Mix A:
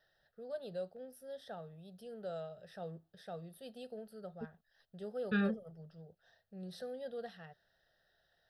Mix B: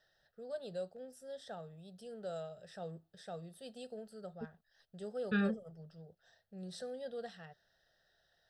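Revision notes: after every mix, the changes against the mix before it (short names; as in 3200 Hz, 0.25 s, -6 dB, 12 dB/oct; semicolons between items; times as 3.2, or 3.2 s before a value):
first voice: add synth low-pass 7600 Hz, resonance Q 6.2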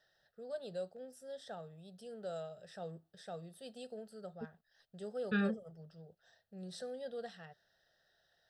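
master: add low shelf 65 Hz -8.5 dB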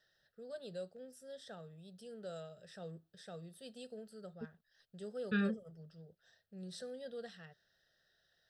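master: add bell 780 Hz -8.5 dB 0.82 oct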